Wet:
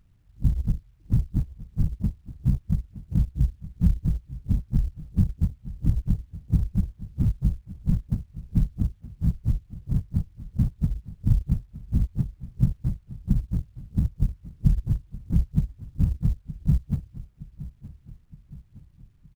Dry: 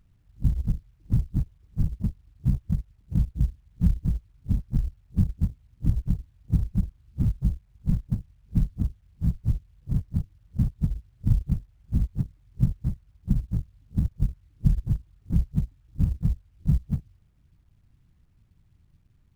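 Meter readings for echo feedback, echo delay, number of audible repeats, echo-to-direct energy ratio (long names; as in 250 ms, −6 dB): 52%, 918 ms, 4, −15.0 dB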